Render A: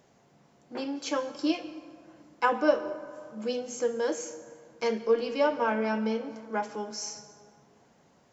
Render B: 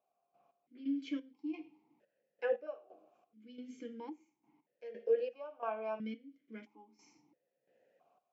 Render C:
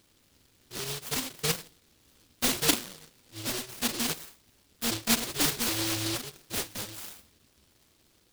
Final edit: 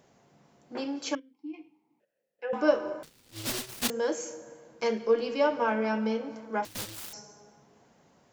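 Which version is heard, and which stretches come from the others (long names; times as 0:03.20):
A
0:01.15–0:02.53: punch in from B
0:03.03–0:03.90: punch in from C
0:06.65–0:07.13: punch in from C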